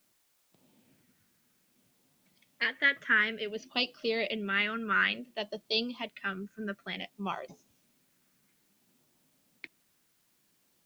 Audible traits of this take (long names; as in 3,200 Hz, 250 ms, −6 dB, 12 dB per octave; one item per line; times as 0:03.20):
phaser sweep stages 4, 0.57 Hz, lowest notch 800–1,700 Hz
a quantiser's noise floor 12 bits, dither triangular